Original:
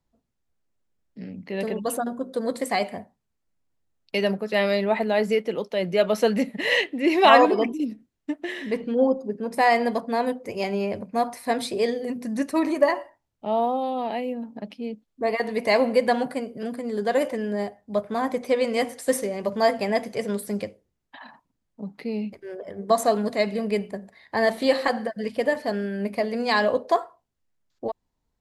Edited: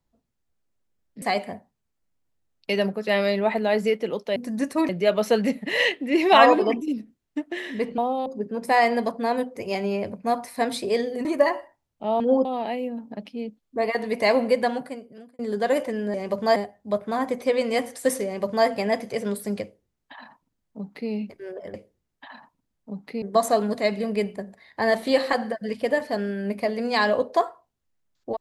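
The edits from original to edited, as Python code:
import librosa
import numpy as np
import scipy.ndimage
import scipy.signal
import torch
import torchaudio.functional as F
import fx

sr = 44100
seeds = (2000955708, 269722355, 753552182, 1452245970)

y = fx.edit(x, sr, fx.cut(start_s=1.22, length_s=1.45),
    fx.swap(start_s=8.9, length_s=0.25, other_s=13.62, other_length_s=0.28),
    fx.move(start_s=12.14, length_s=0.53, to_s=5.81),
    fx.fade_out_span(start_s=15.91, length_s=0.93),
    fx.duplicate(start_s=19.28, length_s=0.42, to_s=17.59),
    fx.duplicate(start_s=20.65, length_s=1.48, to_s=22.77), tone=tone)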